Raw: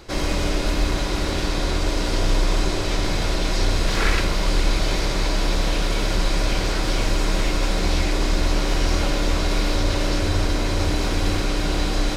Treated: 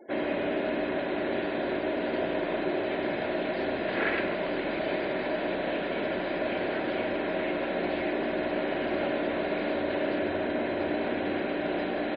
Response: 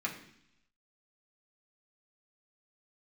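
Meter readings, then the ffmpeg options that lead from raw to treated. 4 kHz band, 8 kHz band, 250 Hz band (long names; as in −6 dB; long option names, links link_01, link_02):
−15.0 dB, below −40 dB, −4.0 dB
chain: -af "highpass=240,equalizer=frequency=250:width_type=q:width=4:gain=8,equalizer=frequency=360:width_type=q:width=4:gain=5,equalizer=frequency=630:width_type=q:width=4:gain=9,equalizer=frequency=1200:width_type=q:width=4:gain=-7,equalizer=frequency=1700:width_type=q:width=4:gain=5,lowpass=frequency=2900:width=0.5412,lowpass=frequency=2900:width=1.3066,aecho=1:1:146:0.211,afftfilt=real='re*gte(hypot(re,im),0.00794)':imag='im*gte(hypot(re,im),0.00794)':win_size=1024:overlap=0.75,volume=-6dB"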